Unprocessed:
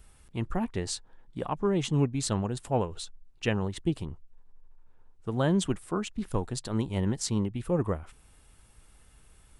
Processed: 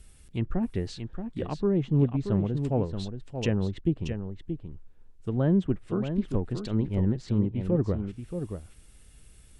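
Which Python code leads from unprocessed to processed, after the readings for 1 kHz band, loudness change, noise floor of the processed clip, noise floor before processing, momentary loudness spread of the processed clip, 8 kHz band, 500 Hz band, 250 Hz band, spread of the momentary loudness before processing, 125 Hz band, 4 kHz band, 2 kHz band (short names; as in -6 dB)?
-6.0 dB, +1.5 dB, -54 dBFS, -59 dBFS, 12 LU, under -10 dB, +1.0 dB, +3.5 dB, 11 LU, +4.0 dB, -6.0 dB, -5.0 dB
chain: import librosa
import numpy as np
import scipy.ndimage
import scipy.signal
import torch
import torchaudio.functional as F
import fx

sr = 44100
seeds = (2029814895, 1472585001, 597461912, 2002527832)

y = fx.env_lowpass_down(x, sr, base_hz=1300.0, full_db=-26.0)
y = fx.peak_eq(y, sr, hz=980.0, db=-11.0, octaves=1.4)
y = y + 10.0 ** (-8.0 / 20.0) * np.pad(y, (int(628 * sr / 1000.0), 0))[:len(y)]
y = F.gain(torch.from_numpy(y), 3.5).numpy()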